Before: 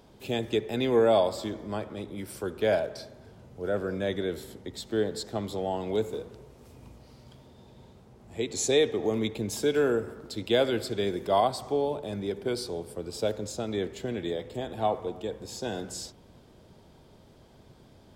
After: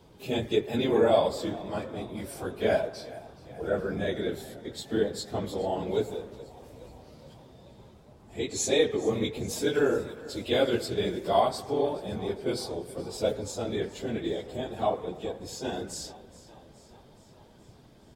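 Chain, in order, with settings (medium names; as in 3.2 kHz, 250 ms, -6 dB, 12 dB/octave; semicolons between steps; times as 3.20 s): phase randomisation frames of 50 ms; frequency-shifting echo 422 ms, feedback 62%, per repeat +34 Hz, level -19 dB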